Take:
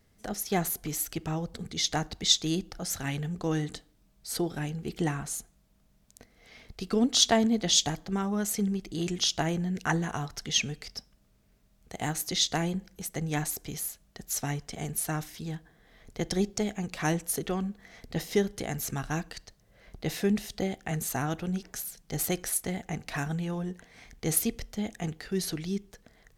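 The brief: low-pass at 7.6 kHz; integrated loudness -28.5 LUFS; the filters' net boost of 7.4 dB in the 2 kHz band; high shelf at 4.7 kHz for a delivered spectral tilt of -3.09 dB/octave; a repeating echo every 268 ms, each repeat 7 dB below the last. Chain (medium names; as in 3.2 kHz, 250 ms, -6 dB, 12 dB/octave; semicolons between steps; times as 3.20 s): low-pass 7.6 kHz; peaking EQ 2 kHz +8.5 dB; treble shelf 4.7 kHz +3.5 dB; feedback delay 268 ms, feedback 45%, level -7 dB; trim -0.5 dB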